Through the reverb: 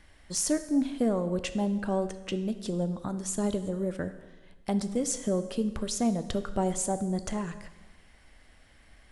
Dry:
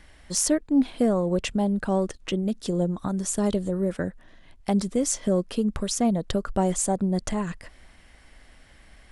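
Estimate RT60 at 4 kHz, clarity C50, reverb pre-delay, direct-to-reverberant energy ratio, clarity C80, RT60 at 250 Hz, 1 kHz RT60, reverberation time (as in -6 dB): 1.1 s, 12.5 dB, 5 ms, 10.5 dB, 14.0 dB, 1.2 s, 1.2 s, 1.2 s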